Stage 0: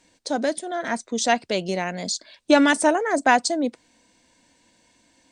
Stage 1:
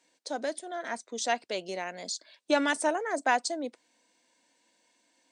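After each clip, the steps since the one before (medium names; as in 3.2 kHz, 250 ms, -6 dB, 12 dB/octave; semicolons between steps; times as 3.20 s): high-pass 330 Hz 12 dB/octave; trim -8 dB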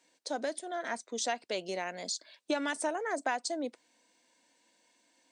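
compression 4:1, threshold -29 dBFS, peak gain reduction 9 dB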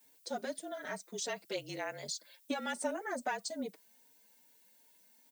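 frequency shift -40 Hz; added noise violet -62 dBFS; endless flanger 5.1 ms +2.5 Hz; trim -1 dB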